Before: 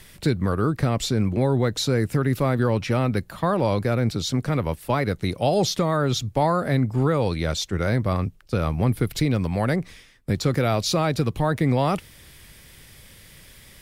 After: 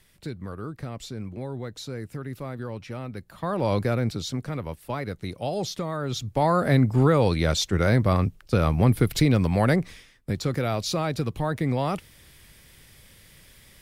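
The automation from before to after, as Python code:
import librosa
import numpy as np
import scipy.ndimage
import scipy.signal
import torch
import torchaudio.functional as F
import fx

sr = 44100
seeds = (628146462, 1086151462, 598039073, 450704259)

y = fx.gain(x, sr, db=fx.line((3.16, -13.0), (3.76, -0.5), (4.53, -8.0), (6.01, -8.0), (6.64, 2.0), (9.72, 2.0), (10.36, -4.5)))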